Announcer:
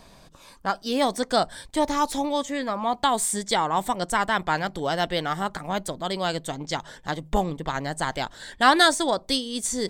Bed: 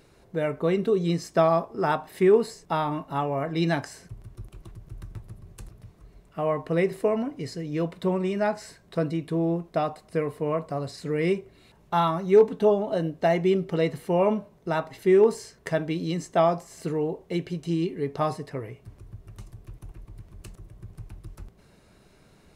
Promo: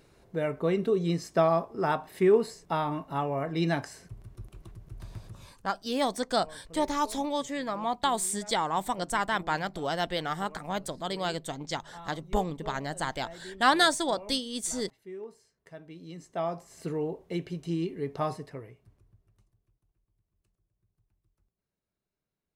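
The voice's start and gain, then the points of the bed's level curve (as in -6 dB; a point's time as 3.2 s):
5.00 s, -5.0 dB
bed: 5.41 s -3 dB
5.62 s -23.5 dB
15.55 s -23.5 dB
16.84 s -4.5 dB
18.39 s -4.5 dB
19.86 s -33 dB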